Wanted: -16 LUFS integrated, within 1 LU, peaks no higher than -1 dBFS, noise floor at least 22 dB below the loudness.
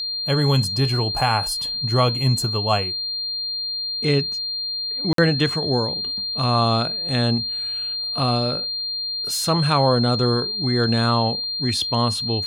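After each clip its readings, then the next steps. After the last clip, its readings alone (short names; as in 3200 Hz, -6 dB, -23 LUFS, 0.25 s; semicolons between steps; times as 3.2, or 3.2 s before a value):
dropouts 1; longest dropout 53 ms; steady tone 4200 Hz; tone level -24 dBFS; loudness -20.5 LUFS; peak -5.0 dBFS; loudness target -16.0 LUFS
-> interpolate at 5.13, 53 ms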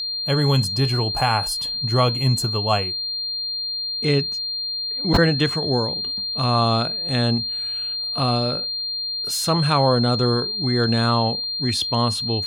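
dropouts 0; steady tone 4200 Hz; tone level -24 dBFS
-> notch 4200 Hz, Q 30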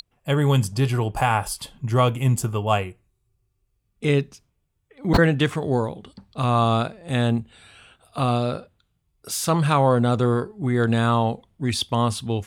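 steady tone none; loudness -22.5 LUFS; peak -4.5 dBFS; loudness target -16.0 LUFS
-> gain +6.5 dB; limiter -1 dBFS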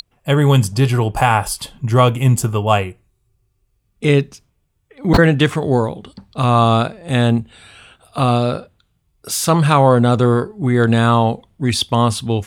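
loudness -16.0 LUFS; peak -1.0 dBFS; noise floor -66 dBFS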